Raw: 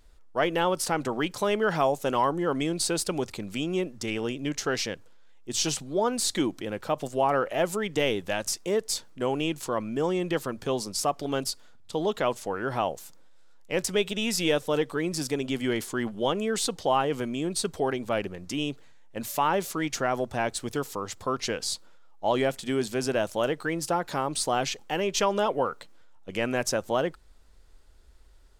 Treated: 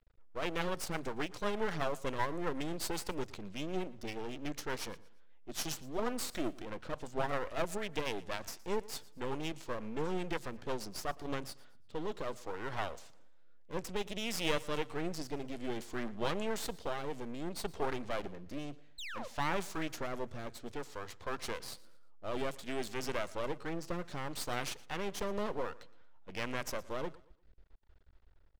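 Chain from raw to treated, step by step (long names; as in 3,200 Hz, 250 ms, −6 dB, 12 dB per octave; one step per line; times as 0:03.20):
low-pass that shuts in the quiet parts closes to 2,400 Hz, open at −21 dBFS
rotating-speaker cabinet horn 8 Hz, later 0.6 Hz, at 0:10.85
sound drawn into the spectrogram fall, 0:18.98–0:19.28, 470–4,300 Hz −37 dBFS
half-wave rectification
on a send: repeating echo 116 ms, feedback 34%, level −21 dB
on the sum: level −3 dB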